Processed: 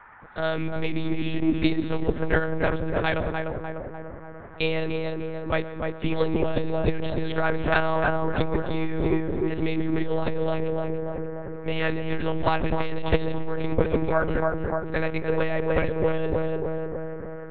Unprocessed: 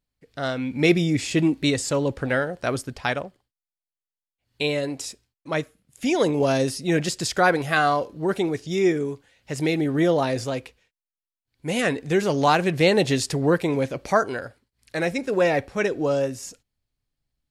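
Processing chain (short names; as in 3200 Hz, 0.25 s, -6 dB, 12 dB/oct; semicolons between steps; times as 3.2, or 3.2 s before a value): darkening echo 0.296 s, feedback 66%, low-pass 1300 Hz, level -3.5 dB; on a send at -19.5 dB: reverb RT60 1.0 s, pre-delay 0.112 s; on the sum: band noise 710–1800 Hz -51 dBFS; monotone LPC vocoder at 8 kHz 160 Hz; core saturation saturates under 160 Hz; gain +2 dB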